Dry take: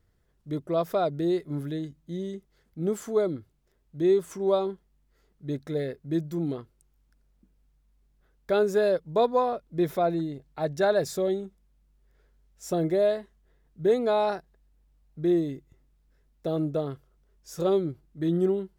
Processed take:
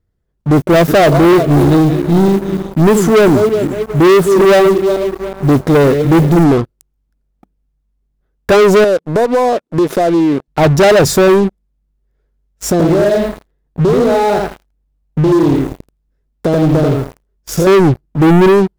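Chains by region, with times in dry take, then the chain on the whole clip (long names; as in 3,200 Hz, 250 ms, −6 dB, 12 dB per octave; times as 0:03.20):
0:00.55–0:06.44: feedback delay that plays each chunk backwards 184 ms, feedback 57%, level −12.5 dB + noise that follows the level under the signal 25 dB
0:08.84–0:10.48: Chebyshev band-pass filter 270–10,000 Hz + downward compressor 4 to 1, threshold −35 dBFS
0:12.71–0:17.67: downward compressor 8 to 1, threshold −34 dBFS + feedback echo at a low word length 83 ms, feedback 35%, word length 10 bits, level −3 dB
whole clip: tilt shelving filter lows +4 dB, about 760 Hz; leveller curve on the samples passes 5; level +7 dB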